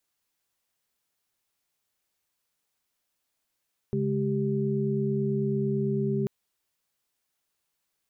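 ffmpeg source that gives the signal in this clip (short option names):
-f lavfi -i "aevalsrc='0.0376*(sin(2*PI*138.59*t)+sin(2*PI*207.65*t)+sin(2*PI*392*t))':d=2.34:s=44100"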